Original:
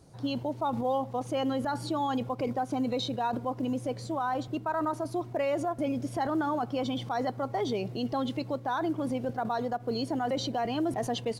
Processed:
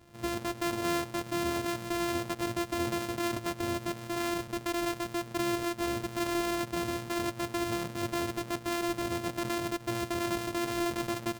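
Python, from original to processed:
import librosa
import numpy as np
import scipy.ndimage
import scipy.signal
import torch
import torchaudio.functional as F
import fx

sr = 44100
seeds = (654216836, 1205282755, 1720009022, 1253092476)

y = np.r_[np.sort(x[:len(x) // 128 * 128].reshape(-1, 128), axis=1).ravel(), x[len(x) // 128 * 128:]]
y = F.gain(torch.from_numpy(y), -2.0).numpy()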